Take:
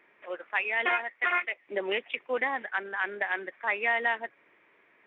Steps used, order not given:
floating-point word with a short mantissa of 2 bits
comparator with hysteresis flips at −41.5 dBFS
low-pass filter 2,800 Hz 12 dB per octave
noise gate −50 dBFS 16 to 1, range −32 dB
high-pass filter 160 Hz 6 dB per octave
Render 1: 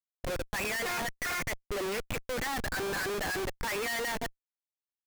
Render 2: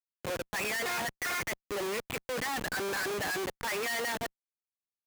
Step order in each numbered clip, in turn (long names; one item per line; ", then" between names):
high-pass filter, then floating-point word with a short mantissa, then low-pass filter, then comparator with hysteresis, then noise gate
low-pass filter, then noise gate, then comparator with hysteresis, then high-pass filter, then floating-point word with a short mantissa